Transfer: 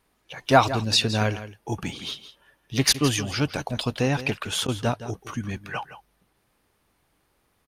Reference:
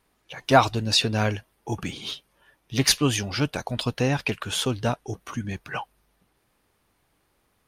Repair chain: interpolate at 2.93/4.67, 11 ms; inverse comb 0.166 s -13.5 dB

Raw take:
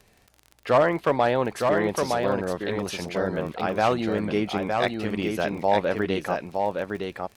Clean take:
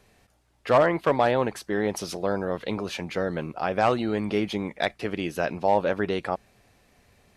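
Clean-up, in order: de-click; inverse comb 0.913 s -4 dB

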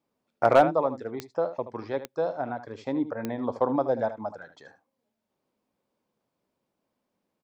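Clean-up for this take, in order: clip repair -9.5 dBFS; de-click; inverse comb 76 ms -12.5 dB

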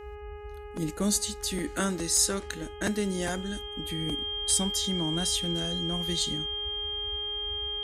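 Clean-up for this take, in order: de-hum 415.5 Hz, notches 7; notch 3200 Hz, Q 30; interpolate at 2.17/3.43, 1.2 ms; noise print and reduce 30 dB

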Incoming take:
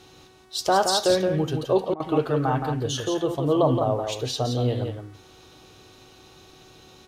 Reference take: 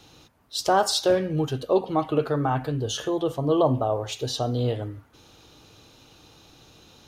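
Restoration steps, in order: de-hum 373.8 Hz, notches 30; interpolate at 1.94, 59 ms; inverse comb 0.171 s -6 dB

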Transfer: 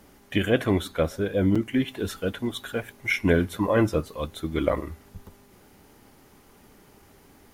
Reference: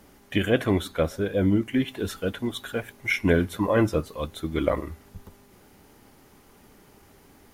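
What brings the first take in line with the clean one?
interpolate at 1.55, 5.4 ms

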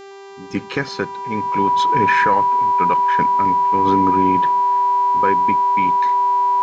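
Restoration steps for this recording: de-hum 394.1 Hz, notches 19; notch 980 Hz, Q 30

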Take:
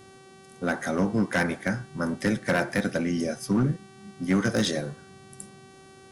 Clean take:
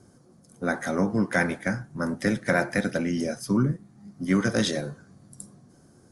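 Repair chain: clip repair -17 dBFS; de-hum 384.2 Hz, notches 29

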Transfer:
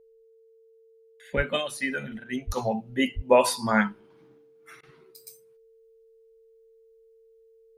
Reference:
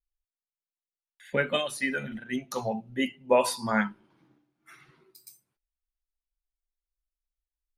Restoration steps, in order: notch 450 Hz, Q 30; de-plosive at 1.36/2.46/3.15; interpolate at 4.81, 20 ms; gain correction -3.5 dB, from 2.57

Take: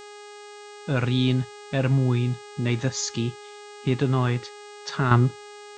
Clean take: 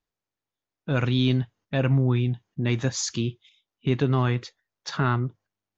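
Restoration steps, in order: de-hum 413.5 Hz, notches 21; gain 0 dB, from 5.11 s -7.5 dB

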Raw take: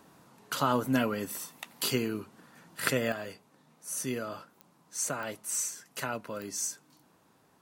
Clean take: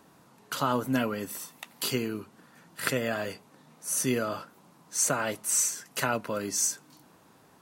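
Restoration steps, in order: de-click; gain correction +6.5 dB, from 3.12

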